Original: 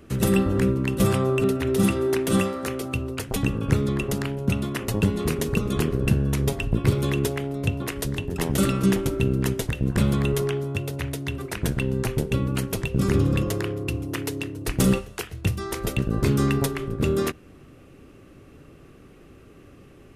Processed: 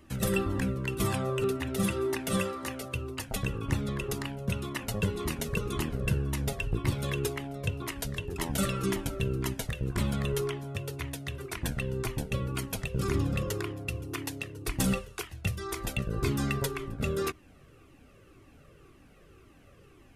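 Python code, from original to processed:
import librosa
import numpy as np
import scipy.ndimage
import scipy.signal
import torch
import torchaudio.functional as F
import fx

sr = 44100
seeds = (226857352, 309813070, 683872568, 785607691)

y = fx.low_shelf(x, sr, hz=470.0, db=-4.5)
y = fx.comb_cascade(y, sr, direction='falling', hz=1.9)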